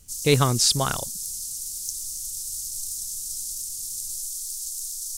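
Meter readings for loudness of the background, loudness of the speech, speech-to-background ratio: −29.5 LKFS, −21.5 LKFS, 8.0 dB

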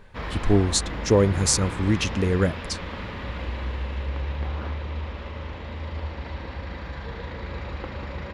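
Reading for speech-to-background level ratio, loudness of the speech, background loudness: 10.0 dB, −23.0 LKFS, −33.0 LKFS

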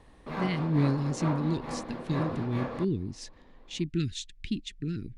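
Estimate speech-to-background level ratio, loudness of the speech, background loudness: 5.0 dB, −32.0 LKFS, −37.0 LKFS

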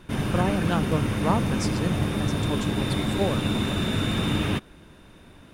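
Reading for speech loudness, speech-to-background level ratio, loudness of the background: −30.0 LKFS, −4.0 dB, −26.0 LKFS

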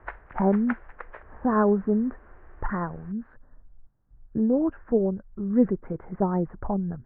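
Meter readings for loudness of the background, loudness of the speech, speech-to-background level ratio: −42.0 LKFS, −26.5 LKFS, 15.5 dB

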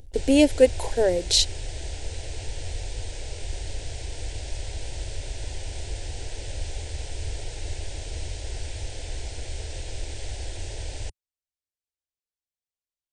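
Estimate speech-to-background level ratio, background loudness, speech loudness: 15.0 dB, −36.0 LKFS, −21.0 LKFS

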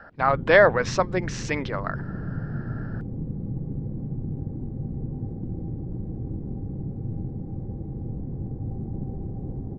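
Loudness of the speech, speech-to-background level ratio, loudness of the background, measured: −22.0 LKFS, 11.0 dB, −33.0 LKFS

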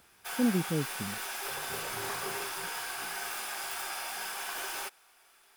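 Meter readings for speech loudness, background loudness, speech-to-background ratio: −31.5 LKFS, −35.5 LKFS, 4.0 dB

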